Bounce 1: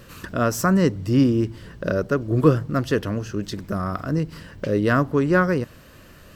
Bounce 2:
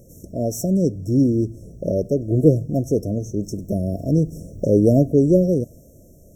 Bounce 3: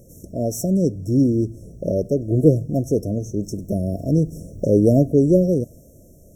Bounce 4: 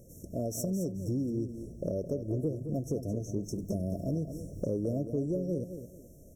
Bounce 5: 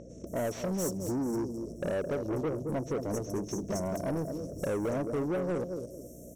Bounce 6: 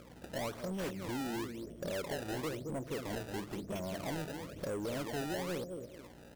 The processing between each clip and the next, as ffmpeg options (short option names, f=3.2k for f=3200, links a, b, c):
-af "afftfilt=real='re*(1-between(b*sr/4096,700,5400))':imag='im*(1-between(b*sr/4096,700,5400))':win_size=4096:overlap=0.75,dynaudnorm=f=300:g=9:m=11.5dB,volume=-1dB"
-af "equalizer=f=10k:w=3.2:g=3.5"
-af "acompressor=threshold=-23dB:ratio=6,aecho=1:1:216|432|648:0.335|0.0904|0.0244,volume=-6.5dB"
-filter_complex "[0:a]aeval=exprs='val(0)+0.00316*(sin(2*PI*60*n/s)+sin(2*PI*2*60*n/s)/2+sin(2*PI*3*60*n/s)/3+sin(2*PI*4*60*n/s)/4+sin(2*PI*5*60*n/s)/5)':c=same,asplit=2[a][b];[b]highpass=f=720:p=1,volume=24dB,asoftclip=type=tanh:threshold=-19.5dB[c];[a][c]amix=inputs=2:normalize=0,lowpass=f=5.2k:p=1,volume=-6dB,acrossover=split=5100[d][e];[e]adelay=270[f];[d][f]amix=inputs=2:normalize=0,volume=-4dB"
-af "acrusher=samples=23:mix=1:aa=0.000001:lfo=1:lforange=36.8:lforate=1,volume=-6.5dB"